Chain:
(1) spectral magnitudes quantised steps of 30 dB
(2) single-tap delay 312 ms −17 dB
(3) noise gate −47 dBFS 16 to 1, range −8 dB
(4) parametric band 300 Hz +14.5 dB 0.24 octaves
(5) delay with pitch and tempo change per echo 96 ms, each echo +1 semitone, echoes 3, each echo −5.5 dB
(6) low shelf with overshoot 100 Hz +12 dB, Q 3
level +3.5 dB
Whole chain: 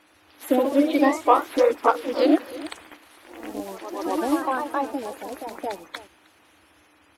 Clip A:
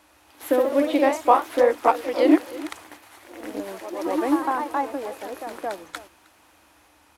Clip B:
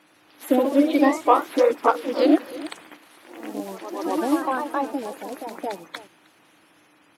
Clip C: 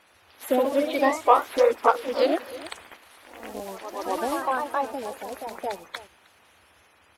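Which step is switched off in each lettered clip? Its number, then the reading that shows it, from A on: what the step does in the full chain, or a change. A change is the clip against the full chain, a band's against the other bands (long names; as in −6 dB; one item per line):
1, 4 kHz band −1.5 dB
6, 250 Hz band +1.5 dB
4, 250 Hz band −8.5 dB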